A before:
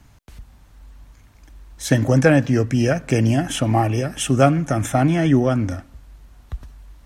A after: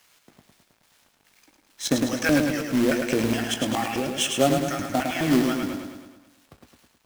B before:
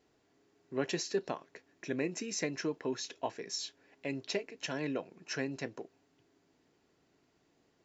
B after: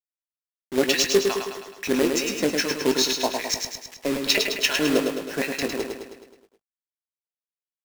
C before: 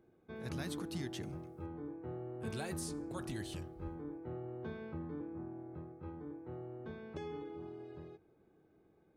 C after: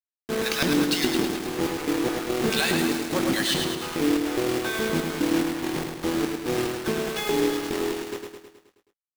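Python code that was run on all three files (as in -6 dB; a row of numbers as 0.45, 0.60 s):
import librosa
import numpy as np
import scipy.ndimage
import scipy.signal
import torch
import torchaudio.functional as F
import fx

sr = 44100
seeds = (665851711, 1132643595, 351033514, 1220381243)

p1 = scipy.signal.sosfilt(scipy.signal.butter(2, 190.0, 'highpass', fs=sr, output='sos'), x)
p2 = fx.low_shelf(p1, sr, hz=430.0, db=-7.0)
p3 = fx.rider(p2, sr, range_db=3, speed_s=0.5)
p4 = p2 + F.gain(torch.from_numpy(p3), -1.0).numpy()
p5 = fx.filter_lfo_bandpass(p4, sr, shape='square', hz=2.4, low_hz=240.0, high_hz=3500.0, q=0.81)
p6 = fx.quant_companded(p5, sr, bits=4)
p7 = fx.doubler(p6, sr, ms=20.0, db=-11)
p8 = p7 + fx.echo_feedback(p7, sr, ms=106, feedback_pct=56, wet_db=-5, dry=0)
y = p8 * 10.0 ** (-26 / 20.0) / np.sqrt(np.mean(np.square(p8)))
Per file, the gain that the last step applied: -3.0, +13.5, +20.5 dB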